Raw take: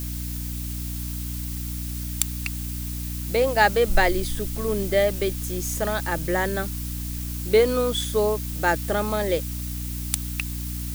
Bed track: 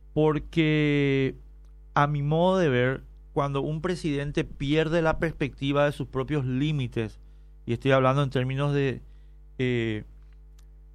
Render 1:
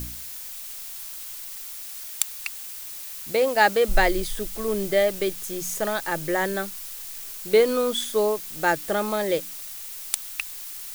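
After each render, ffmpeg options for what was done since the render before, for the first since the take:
-af "bandreject=f=60:t=h:w=4,bandreject=f=120:t=h:w=4,bandreject=f=180:t=h:w=4,bandreject=f=240:t=h:w=4,bandreject=f=300:t=h:w=4"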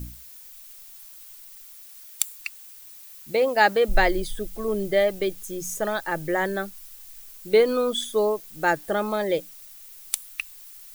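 -af "afftdn=nr=11:nf=-37"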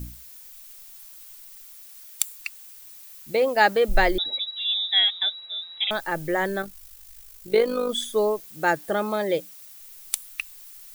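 -filter_complex "[0:a]asettb=1/sr,asplit=3[a][b][c];[a]atrim=end=4.184[d];[b]atrim=start=4.18:end=5.91,asetpts=PTS-STARTPTS,afade=t=in:d=0.004:c=qsin,afade=t=out:st=1.726:d=0.004:c=qsin,lowpass=f=3.3k:t=q:w=0.5098,lowpass=f=3.3k:t=q:w=0.6013,lowpass=f=3.3k:t=q:w=0.9,lowpass=f=3.3k:t=q:w=2.563,afreqshift=-3900[e];[c]atrim=start=5.906[f];[d][e]acrossfade=d=0.004:c1=hsin:c2=qsin[g];[g][f]acrossfade=d=0.004:c1=qsin:c2=hsin,asettb=1/sr,asplit=3[h][i][j];[h]atrim=end=6.624[k];[i]atrim=start=6.62:end=7.9,asetpts=PTS-STARTPTS,afade=t=in:d=0.004:c=qsin,afade=t=out:st=1.276:d=0.004:c=qsin,tremolo=f=51:d=0.571[l];[j]atrim=start=7.896[m];[k][l]acrossfade=d=0.004:c1=hsin:c2=qsin[n];[n][m]acrossfade=d=0.004:c1=qsin:c2=hsin,asettb=1/sr,asplit=3[o][p][q];[o]atrim=end=8.444[r];[p]atrim=start=8.44:end=9.78,asetpts=PTS-STARTPTS,afade=t=in:d=0.004:c=qsin,afade=t=out:st=1.336:d=0.004:c=qsin,highpass=52[s];[q]atrim=start=9.776[t];[r][s]acrossfade=d=0.004:c1=hsin:c2=qsin[u];[u][t]acrossfade=d=0.004:c1=qsin:c2=hsin"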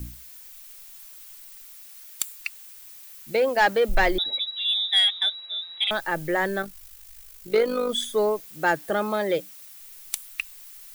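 -filter_complex "[0:a]acrossover=split=240|2600[a][b][c];[b]crystalizer=i=3.5:c=0[d];[a][d][c]amix=inputs=3:normalize=0,asoftclip=type=tanh:threshold=-11dB"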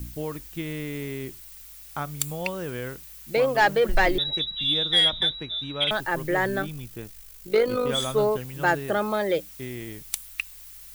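-filter_complex "[1:a]volume=-10dB[a];[0:a][a]amix=inputs=2:normalize=0"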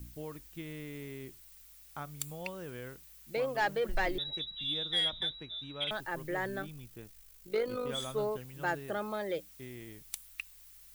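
-af "volume=-11dB"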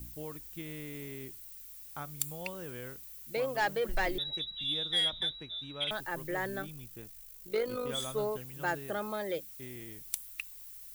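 -af "highshelf=f=7.3k:g=8"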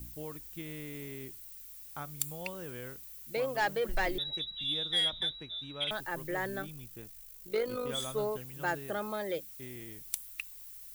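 -af anull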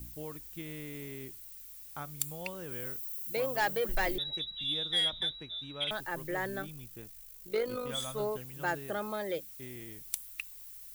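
-filter_complex "[0:a]asettb=1/sr,asplit=3[a][b][c];[a]atrim=end=2.714[d];[b]atrim=start=2.71:end=4.16,asetpts=PTS-STARTPTS,afade=t=in:d=0.004:c=qsin,afade=t=out:st=1.446:d=0.004:c=qsin,highshelf=f=10k:g=9.5[e];[c]atrim=start=4.156[f];[d][e]acrossfade=d=0.004:c1=hsin:c2=qsin[g];[g][f]acrossfade=d=0.004:c1=qsin:c2=hsin,asettb=1/sr,asplit=3[h][i][j];[h]atrim=end=7.794[k];[i]atrim=start=7.79:end=8.2,asetpts=PTS-STARTPTS,afade=t=in:d=0.004:c=qsin,afade=t=out:st=0.406:d=0.004:c=qsin,equalizer=f=370:t=o:w=0.41:g=-11.5[l];[j]atrim=start=8.196[m];[k][l]acrossfade=d=0.004:c1=hsin:c2=qsin[n];[n][m]acrossfade=d=0.004:c1=qsin:c2=hsin"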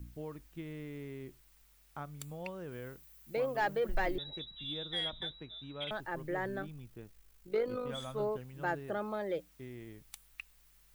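-af "lowpass=f=1.5k:p=1"

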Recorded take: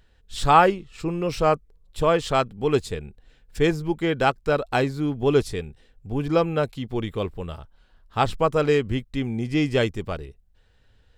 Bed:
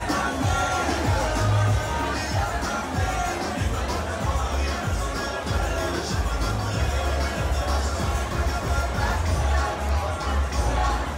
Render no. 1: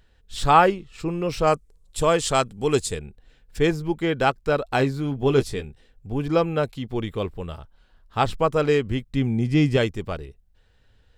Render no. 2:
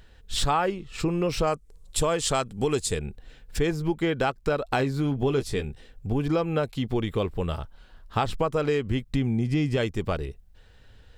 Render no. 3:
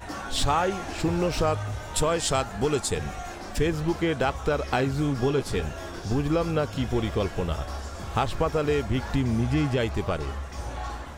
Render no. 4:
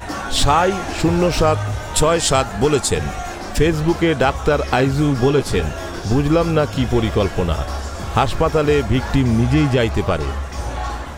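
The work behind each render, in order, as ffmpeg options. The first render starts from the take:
-filter_complex "[0:a]asettb=1/sr,asplit=3[a][b][c];[a]atrim=end=1.474[d];[b]atrim=start=1.47:end=2.99,asetpts=PTS-STARTPTS,afade=t=in:d=0.004:c=qsin,afade=t=out:st=1.516:d=0.004:c=qsin,equalizer=f=8.3k:t=o:w=1.3:g=13[e];[c]atrim=start=2.986[f];[d][e]acrossfade=d=0.004:c1=hsin:c2=qsin[g];[g][f]acrossfade=d=0.004:c1=qsin:c2=hsin,asettb=1/sr,asplit=3[h][i][j];[h]atrim=end=4.784[k];[i]atrim=start=4.78:end=5.65,asetpts=PTS-STARTPTS,afade=t=in:d=0.004:c=qsin,afade=t=out:st=0.866:d=0.004:c=qsin,asplit=2[l][m];[m]adelay=15,volume=-7.5dB[n];[l][n]amix=inputs=2:normalize=0,atrim=end_sample=38367[o];[j]atrim=start=5.646[p];[k][o]acrossfade=d=0.004:c1=hsin:c2=qsin[q];[q][p]acrossfade=d=0.004:c1=qsin:c2=hsin,asettb=1/sr,asplit=3[r][s][t];[r]atrim=end=9.064[u];[s]atrim=start=9.06:end=9.77,asetpts=PTS-STARTPTS,afade=t=in:d=0.004:c=qsin,afade=t=out:st=0.706:d=0.004:c=qsin,equalizer=f=150:w=0.96:g=7[v];[t]atrim=start=9.766[w];[u][v]acrossfade=d=0.004:c1=hsin:c2=qsin[x];[x][w]acrossfade=d=0.004:c1=qsin:c2=hsin"
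-filter_complex "[0:a]asplit=2[a][b];[b]alimiter=limit=-13dB:level=0:latency=1:release=73,volume=1.5dB[c];[a][c]amix=inputs=2:normalize=0,acompressor=threshold=-23dB:ratio=4"
-filter_complex "[1:a]volume=-11dB[a];[0:a][a]amix=inputs=2:normalize=0"
-af "volume=9dB,alimiter=limit=-3dB:level=0:latency=1"

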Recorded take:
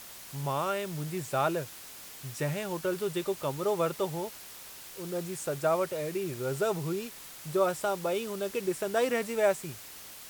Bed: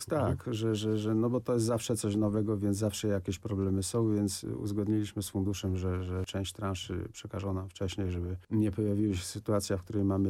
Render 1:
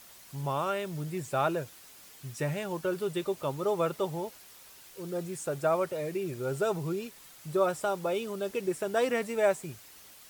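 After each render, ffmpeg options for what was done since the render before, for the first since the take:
-af "afftdn=nr=7:nf=-47"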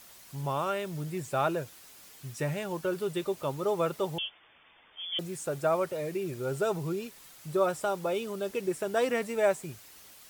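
-filter_complex "[0:a]asettb=1/sr,asplit=3[a][b][c];[a]atrim=end=4.184[d];[b]atrim=start=4.18:end=5.19,asetpts=PTS-STARTPTS,afade=t=in:d=0.004:c=qsin,afade=t=out:st=1.006:d=0.004:c=qsin,lowpass=f=3.1k:t=q:w=0.5098,lowpass=f=3.1k:t=q:w=0.6013,lowpass=f=3.1k:t=q:w=0.9,lowpass=f=3.1k:t=q:w=2.563,afreqshift=-3600[e];[c]atrim=start=5.186[f];[d][e]acrossfade=d=0.004:c1=hsin:c2=qsin[g];[g][f]acrossfade=d=0.004:c1=qsin:c2=hsin"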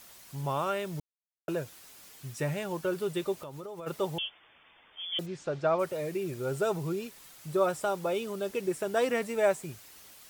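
-filter_complex "[0:a]asplit=3[a][b][c];[a]afade=t=out:st=3.38:d=0.02[d];[b]acompressor=threshold=-38dB:ratio=10:attack=3.2:release=140:knee=1:detection=peak,afade=t=in:st=3.38:d=0.02,afade=t=out:st=3.86:d=0.02[e];[c]afade=t=in:st=3.86:d=0.02[f];[d][e][f]amix=inputs=3:normalize=0,asplit=3[g][h][i];[g]afade=t=out:st=5.25:d=0.02[j];[h]lowpass=f=5.3k:w=0.5412,lowpass=f=5.3k:w=1.3066,afade=t=in:st=5.25:d=0.02,afade=t=out:st=5.78:d=0.02[k];[i]afade=t=in:st=5.78:d=0.02[l];[j][k][l]amix=inputs=3:normalize=0,asplit=3[m][n][o];[m]atrim=end=1,asetpts=PTS-STARTPTS,afade=t=out:st=0.996:d=0.004:c=hsin[p];[n]atrim=start=1:end=1.48,asetpts=PTS-STARTPTS,volume=0[q];[o]atrim=start=1.48,asetpts=PTS-STARTPTS,afade=t=in:d=0.004:c=hsin[r];[p][q][r]concat=n=3:v=0:a=1"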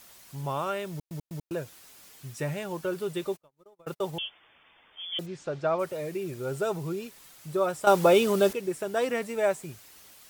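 -filter_complex "[0:a]asplit=3[a][b][c];[a]afade=t=out:st=3.31:d=0.02[d];[b]agate=range=-40dB:threshold=-39dB:ratio=16:release=100:detection=peak,afade=t=in:st=3.31:d=0.02,afade=t=out:st=4.25:d=0.02[e];[c]afade=t=in:st=4.25:d=0.02[f];[d][e][f]amix=inputs=3:normalize=0,asplit=6[g][h][i][j][k][l];[g]atrim=end=1.112[m];[h]atrim=start=0.908:end=1.112[n];[i]atrim=start=0.908:end=1.112[o];[j]atrim=start=1.508:end=7.872[p];[k]atrim=start=7.868:end=8.532,asetpts=PTS-STARTPTS,volume=11.5dB[q];[l]atrim=start=8.528[r];[m][n]acrossfade=d=0.004:c1=hsin:c2=hsin[s];[s][o]acrossfade=d=0.004:c1=hsin:c2=hsin[t];[t][p]acrossfade=d=0.004:c1=hsin:c2=hsin[u];[u][q]acrossfade=d=0.004:c1=hsin:c2=hsin[v];[v][r]acrossfade=d=0.004:c1=hsin:c2=hsin"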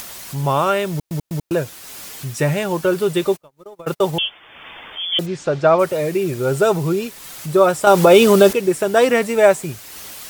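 -af "acompressor=mode=upward:threshold=-41dB:ratio=2.5,alimiter=level_in=13.5dB:limit=-1dB:release=50:level=0:latency=1"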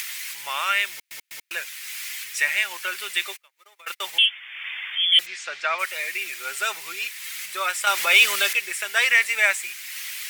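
-af "highpass=f=2.1k:t=q:w=3.1,asoftclip=type=tanh:threshold=-4dB"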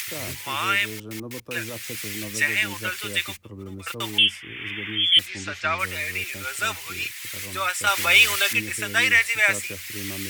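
-filter_complex "[1:a]volume=-7dB[a];[0:a][a]amix=inputs=2:normalize=0"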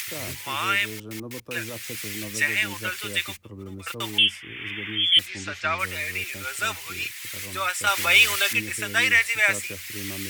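-af "volume=-1dB"

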